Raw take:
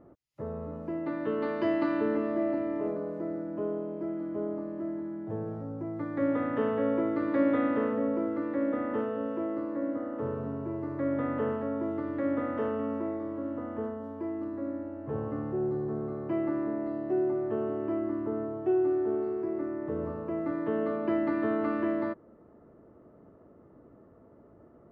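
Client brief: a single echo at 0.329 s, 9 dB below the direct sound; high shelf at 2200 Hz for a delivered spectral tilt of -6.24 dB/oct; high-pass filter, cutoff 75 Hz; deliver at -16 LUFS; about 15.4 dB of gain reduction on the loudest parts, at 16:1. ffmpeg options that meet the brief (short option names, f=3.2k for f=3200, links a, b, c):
-af "highpass=75,highshelf=f=2.2k:g=-8,acompressor=threshold=-38dB:ratio=16,aecho=1:1:329:0.355,volume=26dB"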